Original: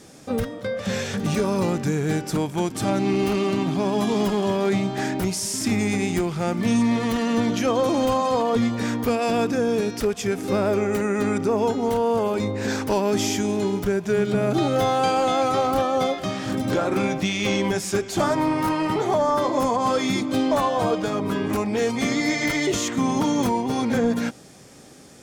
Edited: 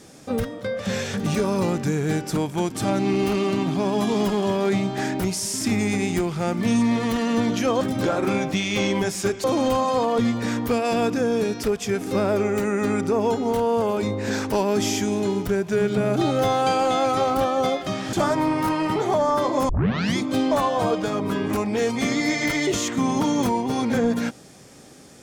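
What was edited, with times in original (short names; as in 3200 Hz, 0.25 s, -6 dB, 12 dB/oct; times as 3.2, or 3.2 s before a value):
16.5–18.13 move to 7.81
19.69 tape start 0.48 s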